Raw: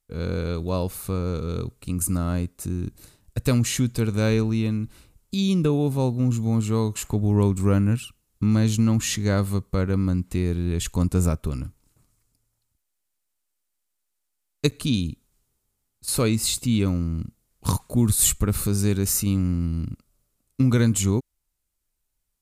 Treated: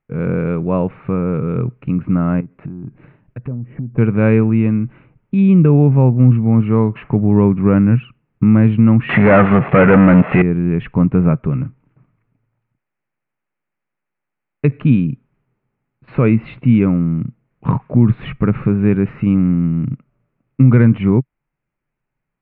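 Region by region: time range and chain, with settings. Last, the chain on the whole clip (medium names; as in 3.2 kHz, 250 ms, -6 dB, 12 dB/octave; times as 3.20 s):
2.40–3.98 s: low-pass that closes with the level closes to 520 Hz, closed at -20 dBFS + compression 5:1, threshold -34 dBFS
9.09–10.42 s: zero-crossing glitches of -24 dBFS + comb 1.5 ms, depth 31% + overdrive pedal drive 33 dB, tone 3.6 kHz, clips at -9.5 dBFS
whole clip: steep low-pass 2.5 kHz 48 dB/octave; resonant low shelf 100 Hz -9.5 dB, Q 3; loudness maximiser +9 dB; trim -1 dB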